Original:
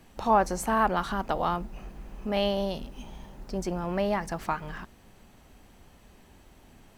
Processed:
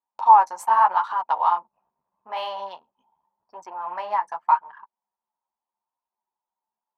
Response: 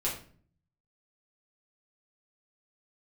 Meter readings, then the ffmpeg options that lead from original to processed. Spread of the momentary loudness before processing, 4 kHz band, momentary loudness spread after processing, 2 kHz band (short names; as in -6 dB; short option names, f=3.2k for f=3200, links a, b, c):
20 LU, -4.0 dB, 19 LU, -0.5 dB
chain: -af "anlmdn=3.98,flanger=delay=6.7:depth=8.6:regen=-17:speed=0.83:shape=triangular,highpass=f=940:t=q:w=10"